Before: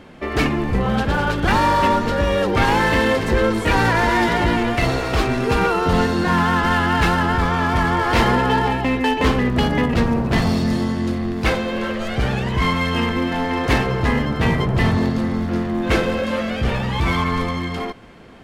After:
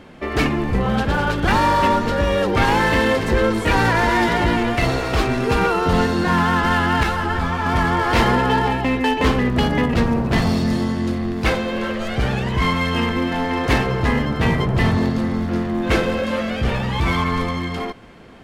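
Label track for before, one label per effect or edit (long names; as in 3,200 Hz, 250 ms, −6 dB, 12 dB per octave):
7.030000	7.660000	string-ensemble chorus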